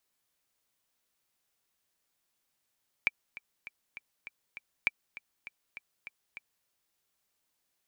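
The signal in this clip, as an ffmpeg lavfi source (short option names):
-f lavfi -i "aevalsrc='pow(10,(-12-18*gte(mod(t,6*60/200),60/200))/20)*sin(2*PI*2340*mod(t,60/200))*exp(-6.91*mod(t,60/200)/0.03)':d=3.6:s=44100"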